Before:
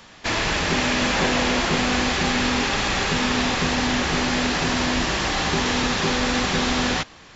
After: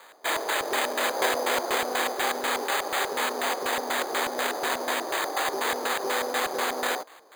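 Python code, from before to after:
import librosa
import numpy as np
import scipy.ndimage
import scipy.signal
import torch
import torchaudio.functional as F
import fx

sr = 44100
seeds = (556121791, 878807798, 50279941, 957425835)

y = scipy.signal.sosfilt(scipy.signal.butter(4, 420.0, 'highpass', fs=sr, output='sos'), x)
y = fx.filter_lfo_lowpass(y, sr, shape='square', hz=4.1, low_hz=660.0, high_hz=2400.0, q=0.8)
y = np.repeat(scipy.signal.resample_poly(y, 1, 8), 8)[:len(y)]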